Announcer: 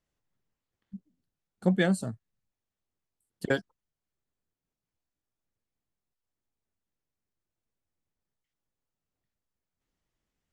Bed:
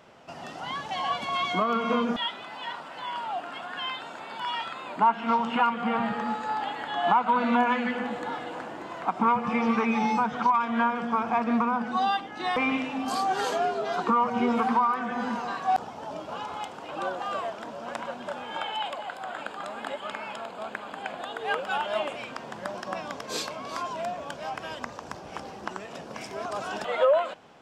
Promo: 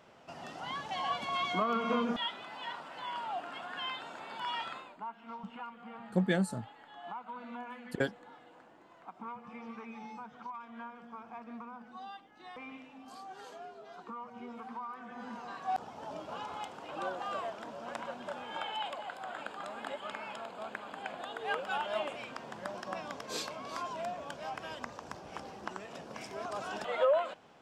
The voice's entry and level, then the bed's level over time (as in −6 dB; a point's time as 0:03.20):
4.50 s, −4.5 dB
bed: 0:04.76 −5.5 dB
0:04.99 −21 dB
0:14.60 −21 dB
0:16.04 −6 dB